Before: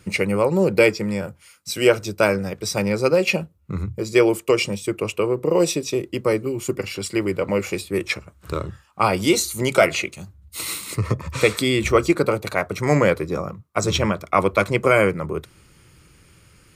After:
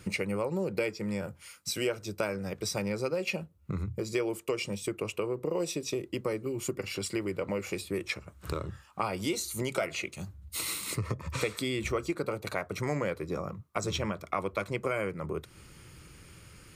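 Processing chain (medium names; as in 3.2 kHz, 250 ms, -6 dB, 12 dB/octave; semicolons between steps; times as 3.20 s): compression 3:1, threshold -33 dBFS, peak gain reduction 17 dB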